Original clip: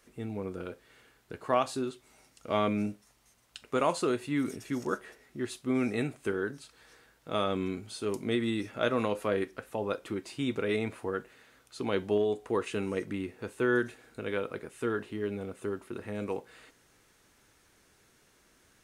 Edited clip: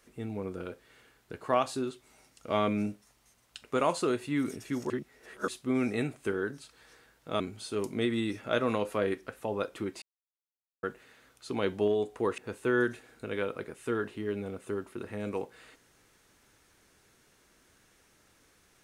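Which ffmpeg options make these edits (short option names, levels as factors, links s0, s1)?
-filter_complex "[0:a]asplit=7[s0][s1][s2][s3][s4][s5][s6];[s0]atrim=end=4.902[s7];[s1]atrim=start=4.898:end=5.482,asetpts=PTS-STARTPTS,areverse[s8];[s2]atrim=start=5.478:end=7.402[s9];[s3]atrim=start=7.698:end=10.32,asetpts=PTS-STARTPTS,afade=t=out:st=2.618:d=0.004:c=hsin[s10];[s4]atrim=start=10.32:end=11.13,asetpts=PTS-STARTPTS,volume=0[s11];[s5]atrim=start=11.13:end=12.682,asetpts=PTS-STARTPTS,afade=t=in:d=0.004:c=hsin[s12];[s6]atrim=start=13.328[s13];[s7][s8]acrossfade=d=0.004:c1=hsin:c2=hsin[s14];[s14][s9]acrossfade=d=0.004:c1=hsin:c2=hsin[s15];[s10][s11][s12]concat=n=3:v=0:a=1[s16];[s15][s16]acrossfade=d=0.004:c1=hsin:c2=hsin[s17];[s17][s13]acrossfade=d=0.004:c1=hsin:c2=hsin"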